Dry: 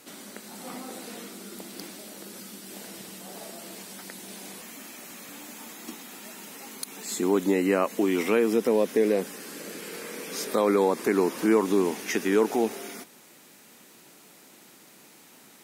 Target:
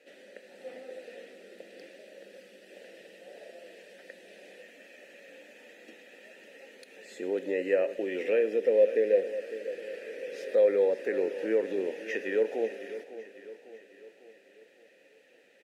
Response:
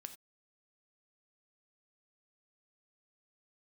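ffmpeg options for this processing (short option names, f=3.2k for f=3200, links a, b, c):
-filter_complex "[0:a]acrusher=bits=7:mode=log:mix=0:aa=0.000001,asplit=3[a][b][c];[a]bandpass=f=530:t=q:w=8,volume=0dB[d];[b]bandpass=f=1.84k:t=q:w=8,volume=-6dB[e];[c]bandpass=f=2.48k:t=q:w=8,volume=-9dB[f];[d][e][f]amix=inputs=3:normalize=0,aecho=1:1:551|1102|1653|2204|2755:0.2|0.102|0.0519|0.0265|0.0135,asplit=2[g][h];[1:a]atrim=start_sample=2205,asetrate=34398,aresample=44100[i];[h][i]afir=irnorm=-1:irlink=0,volume=3.5dB[j];[g][j]amix=inputs=2:normalize=0"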